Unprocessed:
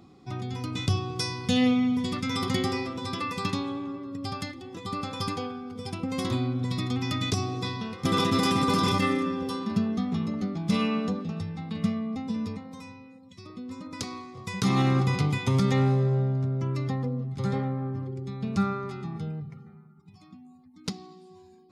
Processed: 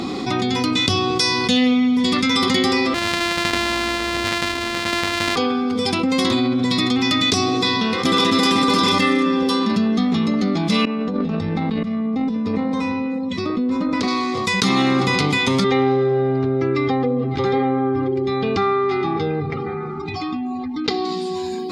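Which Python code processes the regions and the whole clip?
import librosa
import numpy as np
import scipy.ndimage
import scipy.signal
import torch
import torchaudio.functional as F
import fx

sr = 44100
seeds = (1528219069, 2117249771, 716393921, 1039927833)

y = fx.chain(x, sr, fx.sample_sort(block=128),
    fx.lowpass(hz=2800.0, slope=6),
    fx.peak_eq(hz=390.0, db=-10.5, octaves=2.9), at=(2.94, 5.36))
y = fx.chain(y, sr, fx.lowpass(hz=1200.0, slope=6),
    fx.over_compress(threshold_db=-37.0, ratio=-1.0),
    fx.tube_stage(drive_db=22.0, bias=0.45), at=(10.85, 14.08))
y = fx.chain(y, sr, fx.air_absorb(metres=200.0),
    fx.comb(ms=2.5, depth=0.82), at=(15.64, 21.05))
y = fx.graphic_eq_10(y, sr, hz=(125, 250, 500, 1000, 2000, 4000, 8000), db=(-8, 8, 5, 4, 7, 10, 5))
y = fx.env_flatten(y, sr, amount_pct=70)
y = y * 10.0 ** (-2.5 / 20.0)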